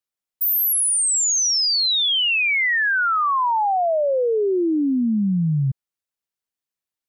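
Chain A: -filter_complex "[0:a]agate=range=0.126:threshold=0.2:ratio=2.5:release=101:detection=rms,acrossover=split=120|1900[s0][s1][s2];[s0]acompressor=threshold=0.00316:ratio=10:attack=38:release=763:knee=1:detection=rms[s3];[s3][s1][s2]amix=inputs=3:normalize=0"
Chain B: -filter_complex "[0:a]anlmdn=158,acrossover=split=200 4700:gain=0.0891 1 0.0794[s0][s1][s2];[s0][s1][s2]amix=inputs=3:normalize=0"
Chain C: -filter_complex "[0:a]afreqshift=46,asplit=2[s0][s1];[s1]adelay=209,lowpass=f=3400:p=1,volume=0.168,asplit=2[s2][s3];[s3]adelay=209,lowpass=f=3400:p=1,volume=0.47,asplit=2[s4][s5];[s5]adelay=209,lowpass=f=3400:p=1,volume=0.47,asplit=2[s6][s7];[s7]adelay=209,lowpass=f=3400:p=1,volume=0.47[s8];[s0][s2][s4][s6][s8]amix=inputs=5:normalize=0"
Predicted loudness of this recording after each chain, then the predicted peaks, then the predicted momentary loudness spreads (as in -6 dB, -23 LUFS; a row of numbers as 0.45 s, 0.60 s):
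-29.5 LUFS, -20.0 LUFS, -18.0 LUFS; -27.0 dBFS, -16.5 dBFS, -14.5 dBFS; 5 LU, 18 LU, 4 LU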